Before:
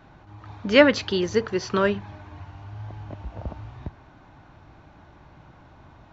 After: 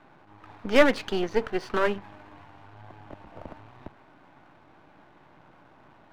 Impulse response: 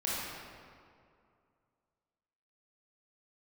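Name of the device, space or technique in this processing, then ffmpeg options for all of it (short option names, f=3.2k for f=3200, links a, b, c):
crystal radio: -af "highpass=200,lowpass=3.2k,aeval=exprs='if(lt(val(0),0),0.251*val(0),val(0))':c=same,volume=1dB"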